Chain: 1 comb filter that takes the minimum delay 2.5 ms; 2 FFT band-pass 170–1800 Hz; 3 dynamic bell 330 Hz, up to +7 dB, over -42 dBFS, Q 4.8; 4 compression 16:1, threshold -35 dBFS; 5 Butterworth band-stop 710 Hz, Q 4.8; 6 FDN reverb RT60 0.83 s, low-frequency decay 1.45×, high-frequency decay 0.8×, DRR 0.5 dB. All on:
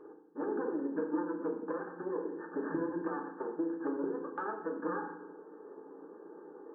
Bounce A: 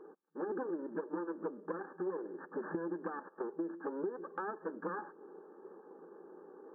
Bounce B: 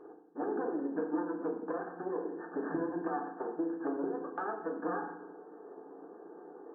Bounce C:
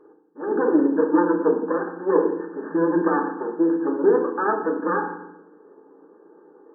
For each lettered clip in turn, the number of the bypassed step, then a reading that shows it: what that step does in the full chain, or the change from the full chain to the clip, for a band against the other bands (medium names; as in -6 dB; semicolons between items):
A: 6, loudness change -4.0 LU; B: 5, 1 kHz band +2.0 dB; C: 4, mean gain reduction 12.0 dB